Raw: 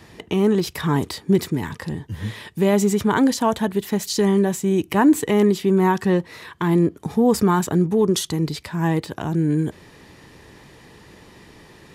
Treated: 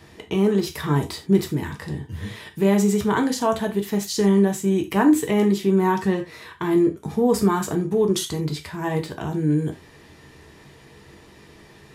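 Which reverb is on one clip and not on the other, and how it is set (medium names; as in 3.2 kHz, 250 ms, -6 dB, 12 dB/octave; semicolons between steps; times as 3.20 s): gated-style reverb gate 110 ms falling, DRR 3 dB; trim -3.5 dB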